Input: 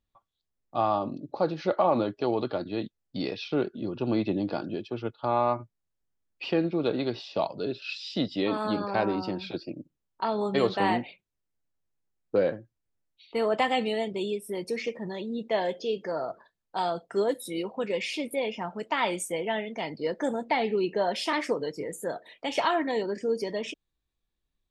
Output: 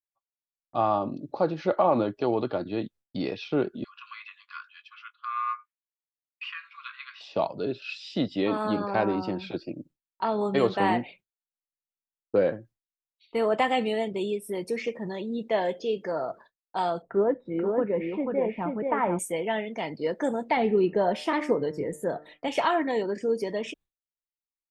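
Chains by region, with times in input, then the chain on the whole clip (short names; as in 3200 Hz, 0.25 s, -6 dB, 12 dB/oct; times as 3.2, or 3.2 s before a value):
3.84–7.21 brick-wall FIR high-pass 1000 Hz + resonant high shelf 3200 Hz -6.5 dB, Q 1.5 + doubler 20 ms -13.5 dB
17.02–19.19 LPF 1700 Hz 24 dB/oct + low shelf 140 Hz +9 dB + echo 0.484 s -3.5 dB
20.57–22.48 tilt -2 dB/oct + de-hum 150.8 Hz, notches 14
whole clip: AGC gain up to 4 dB; dynamic EQ 4600 Hz, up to -6 dB, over -48 dBFS, Q 1.2; expander -45 dBFS; gain -2.5 dB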